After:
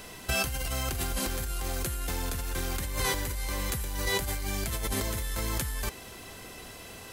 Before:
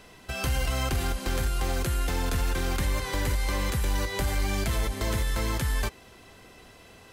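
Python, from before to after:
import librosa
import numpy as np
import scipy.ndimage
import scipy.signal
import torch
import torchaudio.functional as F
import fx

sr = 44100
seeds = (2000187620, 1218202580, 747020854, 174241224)

y = fx.high_shelf(x, sr, hz=7300.0, db=11.5)
y = fx.over_compress(y, sr, threshold_db=-31.0, ratio=-1.0)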